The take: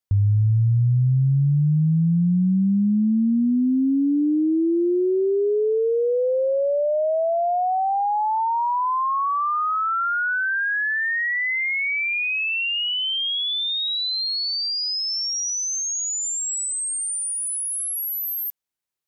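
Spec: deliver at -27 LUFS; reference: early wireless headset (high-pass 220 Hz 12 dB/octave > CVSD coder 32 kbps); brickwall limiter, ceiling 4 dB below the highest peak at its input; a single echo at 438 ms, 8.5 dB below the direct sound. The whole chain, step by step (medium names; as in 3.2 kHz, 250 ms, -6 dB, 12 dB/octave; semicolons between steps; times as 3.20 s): peak limiter -18.5 dBFS; high-pass 220 Hz 12 dB/octave; delay 438 ms -8.5 dB; CVSD coder 32 kbps; trim -4.5 dB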